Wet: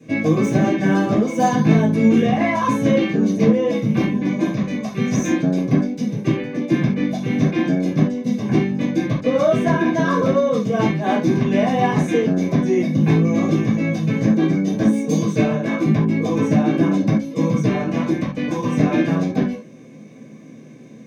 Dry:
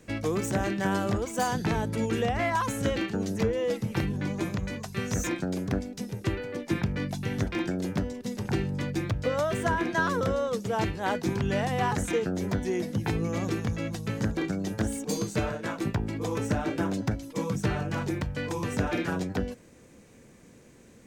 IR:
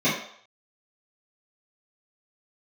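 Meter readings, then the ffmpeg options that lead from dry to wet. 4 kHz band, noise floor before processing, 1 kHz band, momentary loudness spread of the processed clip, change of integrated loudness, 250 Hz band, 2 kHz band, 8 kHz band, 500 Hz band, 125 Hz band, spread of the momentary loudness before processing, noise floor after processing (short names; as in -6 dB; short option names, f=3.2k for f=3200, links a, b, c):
+4.5 dB, -54 dBFS, +7.5 dB, 5 LU, +11.0 dB, +13.5 dB, +6.0 dB, +2.5 dB, +9.5 dB, +10.0 dB, 5 LU, -41 dBFS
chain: -filter_complex "[1:a]atrim=start_sample=2205,atrim=end_sample=4410[a];[0:a][a]afir=irnorm=-1:irlink=0,volume=-8dB"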